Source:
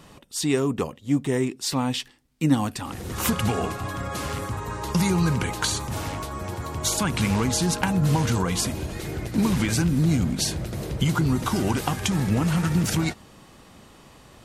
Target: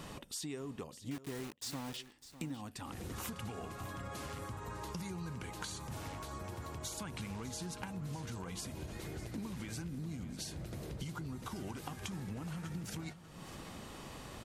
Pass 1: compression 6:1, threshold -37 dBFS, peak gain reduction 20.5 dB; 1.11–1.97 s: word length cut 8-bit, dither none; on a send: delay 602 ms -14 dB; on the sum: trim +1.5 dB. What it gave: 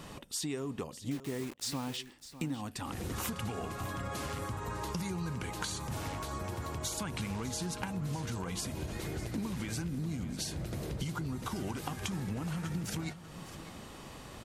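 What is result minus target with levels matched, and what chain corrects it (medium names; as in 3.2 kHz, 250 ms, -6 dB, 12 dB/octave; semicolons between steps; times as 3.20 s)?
compression: peak gain reduction -6 dB
compression 6:1, threshold -44 dBFS, peak gain reduction 26.5 dB; 1.11–1.97 s: word length cut 8-bit, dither none; on a send: delay 602 ms -14 dB; on the sum: trim +1.5 dB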